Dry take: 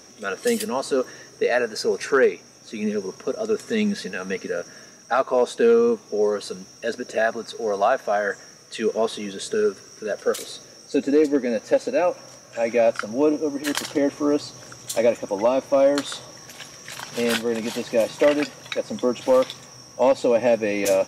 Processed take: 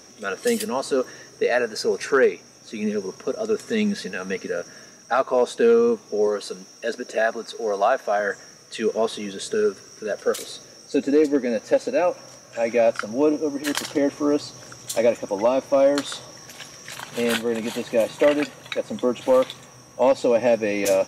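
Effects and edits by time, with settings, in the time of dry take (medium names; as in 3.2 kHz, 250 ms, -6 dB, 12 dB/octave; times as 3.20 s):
6.27–8.20 s: high-pass 200 Hz
16.96–20.08 s: peaking EQ 5.3 kHz -12 dB 0.2 oct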